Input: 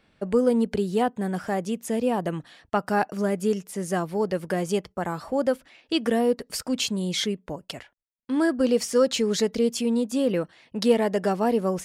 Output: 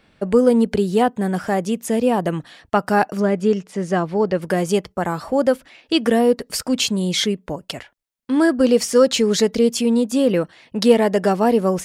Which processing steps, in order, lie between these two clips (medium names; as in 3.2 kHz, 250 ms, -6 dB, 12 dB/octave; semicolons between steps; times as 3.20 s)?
3.20–4.42 s: Bessel low-pass 4.1 kHz, order 2; trim +6.5 dB